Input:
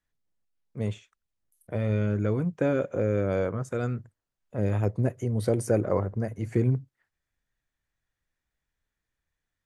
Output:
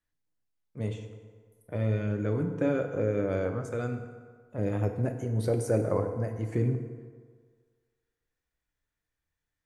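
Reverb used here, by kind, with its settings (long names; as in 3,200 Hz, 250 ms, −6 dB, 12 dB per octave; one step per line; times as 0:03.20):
feedback delay network reverb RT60 1.7 s, low-frequency decay 0.8×, high-frequency decay 0.6×, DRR 5 dB
level −3.5 dB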